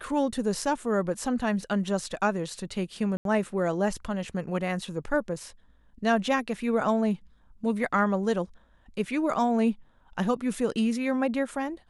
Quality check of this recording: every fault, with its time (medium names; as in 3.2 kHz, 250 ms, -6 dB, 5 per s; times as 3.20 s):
3.17–3.25 s: dropout 82 ms